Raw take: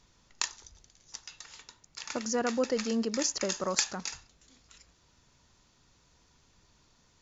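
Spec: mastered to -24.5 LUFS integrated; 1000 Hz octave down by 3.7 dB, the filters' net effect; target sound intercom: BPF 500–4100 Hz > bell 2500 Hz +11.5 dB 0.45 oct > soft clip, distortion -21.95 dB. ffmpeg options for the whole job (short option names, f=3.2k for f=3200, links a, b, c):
-af "highpass=500,lowpass=4.1k,equalizer=f=1k:t=o:g=-5,equalizer=f=2.5k:t=o:w=0.45:g=11.5,asoftclip=threshold=-13dB,volume=11.5dB"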